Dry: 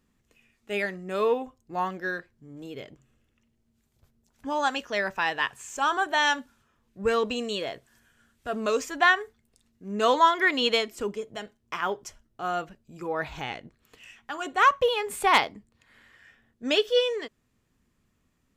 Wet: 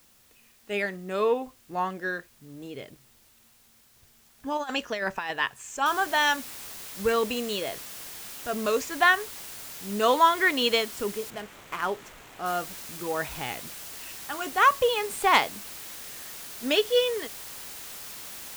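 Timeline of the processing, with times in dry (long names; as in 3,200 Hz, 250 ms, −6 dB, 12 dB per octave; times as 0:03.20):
0:04.57–0:05.31: compressor whose output falls as the input rises −29 dBFS, ratio −0.5
0:05.86: noise floor change −60 dB −41 dB
0:11.30–0:12.46: running median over 9 samples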